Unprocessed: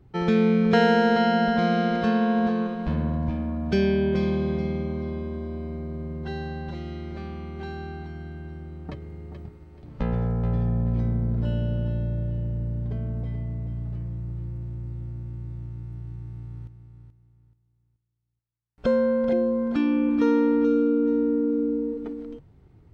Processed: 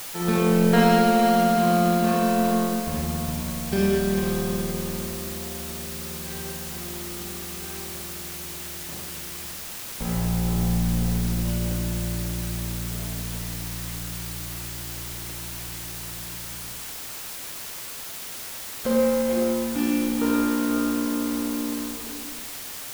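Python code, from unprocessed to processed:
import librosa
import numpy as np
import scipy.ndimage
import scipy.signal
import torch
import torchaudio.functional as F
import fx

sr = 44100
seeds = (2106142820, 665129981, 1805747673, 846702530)

y = fx.power_curve(x, sr, exponent=1.4)
y = fx.rev_schroeder(y, sr, rt60_s=1.3, comb_ms=31, drr_db=-3.5)
y = fx.quant_dither(y, sr, seeds[0], bits=6, dither='triangular')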